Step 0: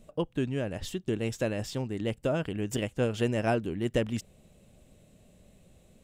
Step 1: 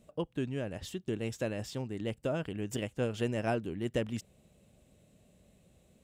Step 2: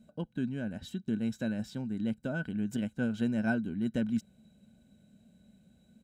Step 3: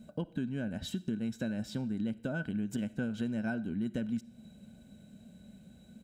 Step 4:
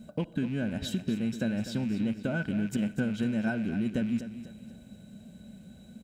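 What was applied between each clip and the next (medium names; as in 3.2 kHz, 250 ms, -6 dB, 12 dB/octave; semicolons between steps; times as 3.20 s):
high-pass 46 Hz; trim -4.5 dB
comb 1.3 ms, depth 32%; small resonant body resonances 220/1500/3900 Hz, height 17 dB, ringing for 50 ms; trim -7 dB
compression 4:1, threshold -40 dBFS, peak gain reduction 13 dB; on a send at -18 dB: reverberation RT60 0.65 s, pre-delay 15 ms; on the sum: trim +7 dB
rattle on loud lows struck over -42 dBFS, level -44 dBFS; feedback delay 248 ms, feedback 41%, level -12 dB; trim +4.5 dB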